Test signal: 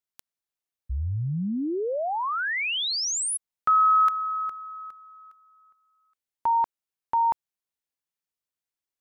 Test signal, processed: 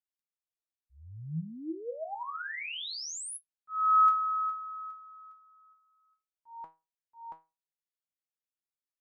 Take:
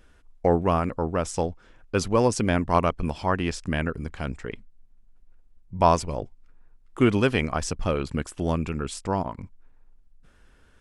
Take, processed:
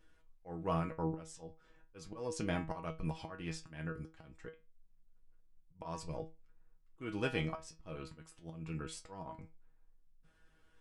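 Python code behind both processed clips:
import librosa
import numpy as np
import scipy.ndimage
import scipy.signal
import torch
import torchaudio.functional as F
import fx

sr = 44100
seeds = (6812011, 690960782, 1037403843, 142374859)

y = fx.auto_swell(x, sr, attack_ms=305.0)
y = fx.comb_fb(y, sr, f0_hz=160.0, decay_s=0.26, harmonics='all', damping=0.2, mix_pct=90)
y = y * 10.0 ** (-1.0 / 20.0)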